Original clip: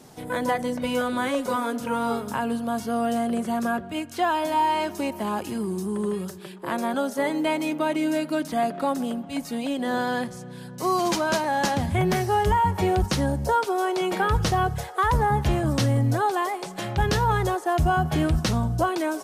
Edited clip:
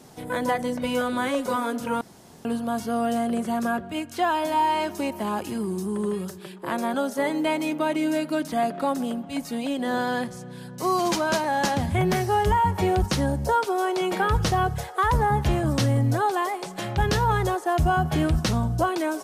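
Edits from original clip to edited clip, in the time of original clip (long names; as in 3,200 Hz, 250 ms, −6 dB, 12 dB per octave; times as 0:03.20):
0:02.01–0:02.45: fill with room tone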